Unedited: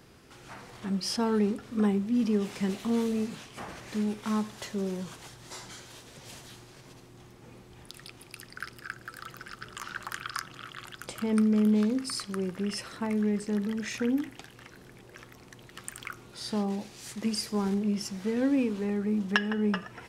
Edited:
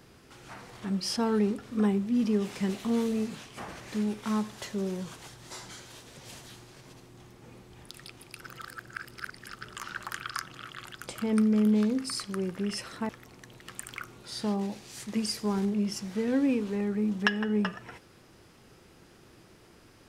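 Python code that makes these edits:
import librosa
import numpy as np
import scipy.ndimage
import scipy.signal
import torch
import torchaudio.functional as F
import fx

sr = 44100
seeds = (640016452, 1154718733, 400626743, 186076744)

y = fx.edit(x, sr, fx.reverse_span(start_s=8.4, length_s=1.07),
    fx.cut(start_s=13.09, length_s=2.09), tone=tone)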